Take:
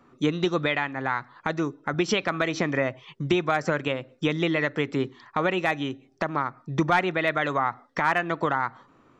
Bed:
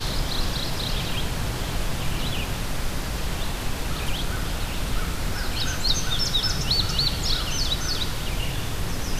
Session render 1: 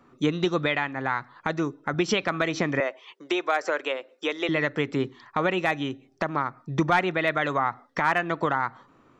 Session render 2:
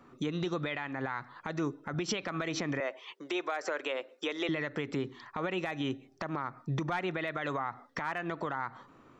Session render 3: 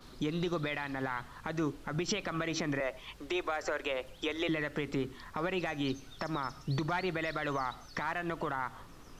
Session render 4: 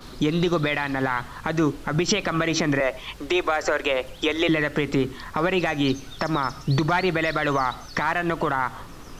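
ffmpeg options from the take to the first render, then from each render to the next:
-filter_complex "[0:a]asettb=1/sr,asplit=3[a][b][c];[a]atrim=end=2.804[d];[b]atrim=start=2.8:end=4.49,asetpts=PTS-STARTPTS,afade=t=in:d=0.004:c=qsin,afade=t=out:st=1.686:d=0.004:c=qsin,highpass=f=370:w=0.5412,highpass=f=370:w=1.3066[e];[c]atrim=start=4.486[f];[d][e]acrossfade=d=0.004:c1=hsin:c2=qsin[g];[g][f]acrossfade=d=0.004:c1=qsin:c2=hsin"
-af "acompressor=threshold=-25dB:ratio=6,alimiter=limit=-23.5dB:level=0:latency=1:release=67"
-filter_complex "[1:a]volume=-27.5dB[a];[0:a][a]amix=inputs=2:normalize=0"
-af "volume=11.5dB"

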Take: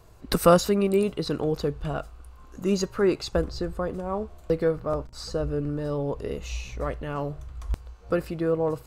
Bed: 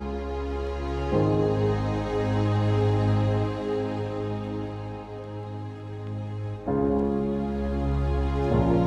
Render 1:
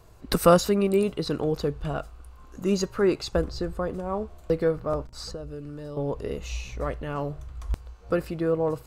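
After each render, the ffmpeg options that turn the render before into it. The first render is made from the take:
-filter_complex "[0:a]asettb=1/sr,asplit=3[a][b][c];[a]atrim=end=5.314[d];[b]atrim=start=5.31:end=5.97,asetpts=PTS-STARTPTS,afade=t=in:d=0.004:c=qsin,afade=t=out:st=0.656:d=0.004:c=qsin,acrossover=split=970|2800[e][f][g];[e]acompressor=threshold=-36dB:ratio=4[h];[f]acompressor=threshold=-58dB:ratio=4[i];[g]acompressor=threshold=-59dB:ratio=4[j];[h][i][j]amix=inputs=3:normalize=0[k];[c]atrim=start=5.966[l];[d][k]acrossfade=d=0.004:c1=hsin:c2=qsin[m];[m][l]acrossfade=d=0.004:c1=qsin:c2=hsin"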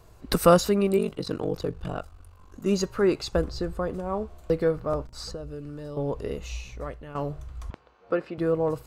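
-filter_complex "[0:a]asettb=1/sr,asplit=3[a][b][c];[a]atrim=end=0.974[d];[b]atrim=start=0.97:end=2.66,asetpts=PTS-STARTPTS,afade=t=in:d=0.004:c=qsin,afade=t=out:st=1.686:d=0.004:c=qsin,aeval=exprs='val(0)*sin(2*PI*24*n/s)':c=same[e];[c]atrim=start=2.656[f];[d][e]acrossfade=d=0.004:c1=hsin:c2=qsin[g];[g][f]acrossfade=d=0.004:c1=qsin:c2=hsin,asettb=1/sr,asplit=3[h][i][j];[h]atrim=end=7.704[k];[i]atrim=start=7.7:end=8.38,asetpts=PTS-STARTPTS,afade=t=in:d=0.004:c=qsin,afade=t=out:st=0.676:d=0.004:c=qsin,highpass=260,lowpass=3.1k[l];[j]atrim=start=8.376[m];[k][l]acrossfade=d=0.004:c1=hsin:c2=qsin[n];[n][m]acrossfade=d=0.004:c1=qsin:c2=hsin,asplit=2[o][p];[o]atrim=end=7.15,asetpts=PTS-STARTPTS,afade=t=out:st=6.26:d=0.89:silence=0.298538[q];[p]atrim=start=7.15,asetpts=PTS-STARTPTS,afade=t=in:d=0.004:c=hsin:silence=0.298538[r];[q][r]concat=n=2:v=0:a=1"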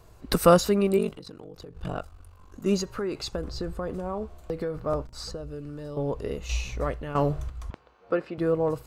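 -filter_complex "[0:a]asettb=1/sr,asplit=3[a][b][c];[a]atrim=end=1.144[d];[b]atrim=start=1.14:end=1.76,asetpts=PTS-STARTPTS,afade=t=in:d=0.004:c=qsin,afade=t=out:st=0.616:d=0.004:c=qsin,acompressor=threshold=-38dB:ratio=20:attack=3.2:release=140:knee=1:detection=peak[e];[c]atrim=start=1.756[f];[d][e]acrossfade=d=0.004:c1=hsin:c2=qsin[g];[g][f]acrossfade=d=0.004:c1=qsin:c2=hsin,asettb=1/sr,asplit=3[h][i][j];[h]atrim=end=2.774[k];[i]atrim=start=2.77:end=4.78,asetpts=PTS-STARTPTS,afade=t=in:d=0.004:c=qsin,afade=t=out:st=2.006:d=0.004:c=qsin,acompressor=threshold=-26dB:ratio=6:attack=3.2:release=140:knee=1:detection=peak[l];[j]atrim=start=4.776[m];[k][l]acrossfade=d=0.004:c1=hsin:c2=qsin[n];[n][m]acrossfade=d=0.004:c1=qsin:c2=hsin,asettb=1/sr,asplit=3[o][p][q];[o]atrim=end=6.494[r];[p]atrim=start=6.49:end=7.5,asetpts=PTS-STARTPTS,afade=t=in:d=0.004:c=qsin,afade=t=out:st=1.006:d=0.004:c=qsin,acontrast=68[s];[q]atrim=start=7.496[t];[r][s]acrossfade=d=0.004:c1=hsin:c2=qsin[u];[u][t]acrossfade=d=0.004:c1=qsin:c2=hsin"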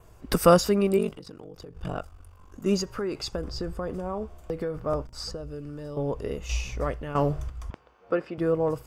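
-af "bandreject=f=4.1k:w=6.2,adynamicequalizer=threshold=0.00158:dfrequency=4900:dqfactor=4.7:tfrequency=4900:tqfactor=4.7:attack=5:release=100:ratio=0.375:range=2.5:mode=boostabove:tftype=bell"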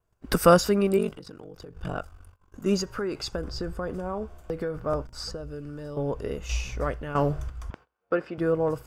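-af "agate=range=-23dB:threshold=-47dB:ratio=16:detection=peak,equalizer=f=1.5k:w=5.8:g=6"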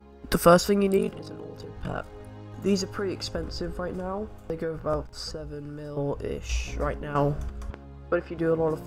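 -filter_complex "[1:a]volume=-19dB[a];[0:a][a]amix=inputs=2:normalize=0"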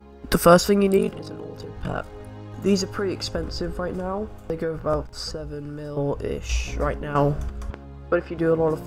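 -af "volume=4dB,alimiter=limit=-3dB:level=0:latency=1"

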